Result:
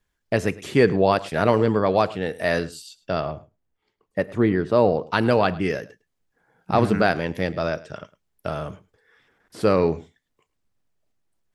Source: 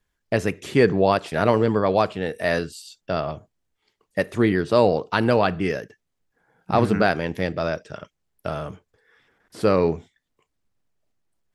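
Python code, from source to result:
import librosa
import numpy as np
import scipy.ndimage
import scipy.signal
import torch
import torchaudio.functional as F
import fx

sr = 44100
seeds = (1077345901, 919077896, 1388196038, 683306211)

y = fx.high_shelf(x, sr, hz=2700.0, db=-12.0, at=(3.28, 5.07))
y = y + 10.0 ** (-20.0 / 20.0) * np.pad(y, (int(106 * sr / 1000.0), 0))[:len(y)]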